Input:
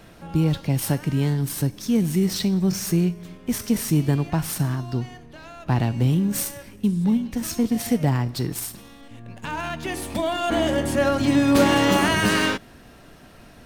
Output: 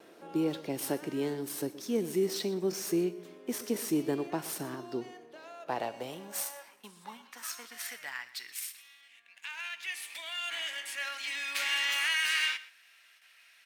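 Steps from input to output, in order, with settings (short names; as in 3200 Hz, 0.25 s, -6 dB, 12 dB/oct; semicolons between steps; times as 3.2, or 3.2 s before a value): outdoor echo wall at 21 m, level -17 dB; high-pass sweep 370 Hz -> 2200 Hz, 5.08–8.58; gate with hold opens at -42 dBFS; gain -8.5 dB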